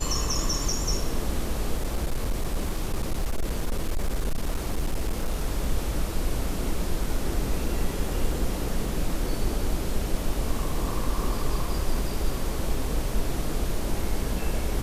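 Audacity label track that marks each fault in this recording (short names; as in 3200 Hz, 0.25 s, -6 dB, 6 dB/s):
1.770000	5.450000	clipped -21 dBFS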